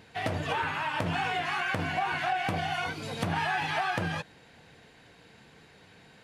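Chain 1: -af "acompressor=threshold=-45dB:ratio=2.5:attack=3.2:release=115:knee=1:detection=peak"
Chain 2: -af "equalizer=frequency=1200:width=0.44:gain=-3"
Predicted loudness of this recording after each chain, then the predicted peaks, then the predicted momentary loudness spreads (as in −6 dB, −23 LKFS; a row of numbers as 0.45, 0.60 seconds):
−42.0, −32.5 LKFS; −28.0, −18.0 dBFS; 14, 4 LU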